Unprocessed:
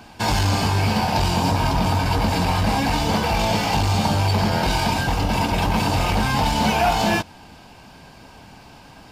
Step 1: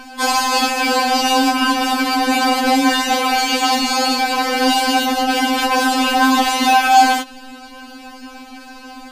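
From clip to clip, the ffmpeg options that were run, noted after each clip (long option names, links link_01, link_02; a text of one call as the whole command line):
ffmpeg -i in.wav -af "acontrast=84,afftfilt=real='re*3.46*eq(mod(b,12),0)':imag='im*3.46*eq(mod(b,12),0)':win_size=2048:overlap=0.75,volume=3.5dB" out.wav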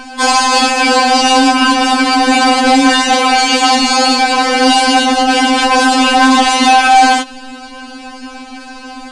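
ffmpeg -i in.wav -af "volume=10dB,asoftclip=hard,volume=-10dB,aresample=22050,aresample=44100,volume=6.5dB" out.wav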